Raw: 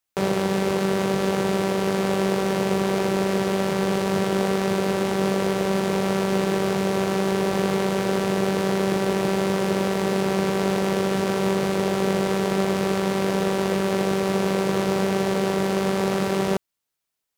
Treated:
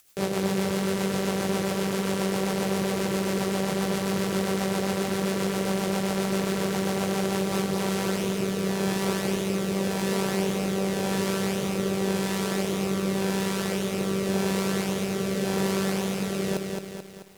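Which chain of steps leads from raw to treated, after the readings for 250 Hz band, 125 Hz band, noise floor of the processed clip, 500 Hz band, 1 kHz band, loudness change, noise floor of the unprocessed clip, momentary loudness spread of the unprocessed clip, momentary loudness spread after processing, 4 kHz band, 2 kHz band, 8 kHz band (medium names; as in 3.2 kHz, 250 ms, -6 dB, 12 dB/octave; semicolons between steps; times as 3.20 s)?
-3.0 dB, -2.5 dB, -32 dBFS, -5.5 dB, -6.0 dB, -4.0 dB, -82 dBFS, 1 LU, 2 LU, -1.5 dB, -3.5 dB, +1.0 dB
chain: treble shelf 5.1 kHz +8 dB; upward compressor, threshold -33 dBFS; rotary cabinet horn 7.5 Hz, later 0.9 Hz, at 7.02 s; bit-crushed delay 218 ms, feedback 55%, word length 8-bit, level -4 dB; trim -3.5 dB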